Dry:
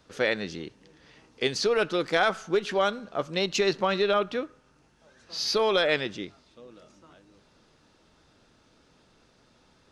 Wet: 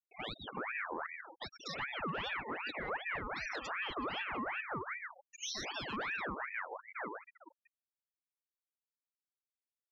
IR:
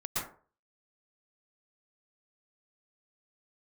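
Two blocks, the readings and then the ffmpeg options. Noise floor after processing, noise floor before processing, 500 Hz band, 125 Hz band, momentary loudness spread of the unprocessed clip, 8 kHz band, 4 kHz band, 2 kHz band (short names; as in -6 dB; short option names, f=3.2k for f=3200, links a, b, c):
under -85 dBFS, -63 dBFS, -19.5 dB, -11.0 dB, 14 LU, -10.5 dB, -13.0 dB, -7.0 dB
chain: -filter_complex "[0:a]asplit=2[a][b];[b]asplit=4[c][d][e][f];[c]adelay=144,afreqshift=-120,volume=-14.5dB[g];[d]adelay=288,afreqshift=-240,volume=-22.9dB[h];[e]adelay=432,afreqshift=-360,volume=-31.3dB[i];[f]adelay=576,afreqshift=-480,volume=-39.7dB[j];[g][h][i][j]amix=inputs=4:normalize=0[k];[a][k]amix=inputs=2:normalize=0,acompressor=threshold=-35dB:ratio=8,agate=range=-33dB:threshold=-53dB:ratio=3:detection=peak,asoftclip=type=hard:threshold=-32dB,highshelf=f=5.4k:g=-12,acrossover=split=700|3700[l][m][n];[n]adelay=100[o];[l]adelay=380[p];[p][m][o]amix=inputs=3:normalize=0,afftfilt=real='re*gte(hypot(re,im),0.0112)':imag='im*gte(hypot(re,im),0.0112)':win_size=1024:overlap=0.75,highpass=44,asoftclip=type=tanh:threshold=-32.5dB,lowshelf=f=93:g=-2.5,alimiter=level_in=17.5dB:limit=-24dB:level=0:latency=1:release=210,volume=-17.5dB,aeval=exprs='val(0)*sin(2*PI*1400*n/s+1400*0.55/2.6*sin(2*PI*2.6*n/s))':c=same,volume=11.5dB"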